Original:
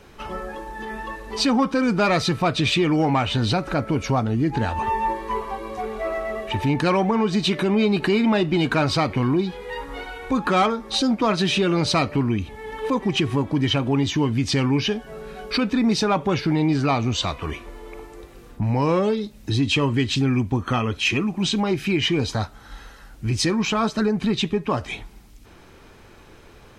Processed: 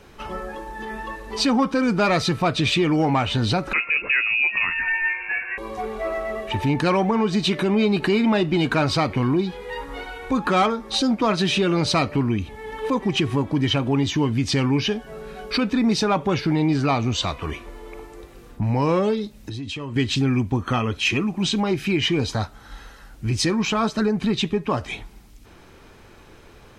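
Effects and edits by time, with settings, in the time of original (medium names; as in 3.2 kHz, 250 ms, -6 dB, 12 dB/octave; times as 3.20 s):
3.73–5.58 s: frequency inversion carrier 2.7 kHz
19.40–19.96 s: compression 8:1, threshold -28 dBFS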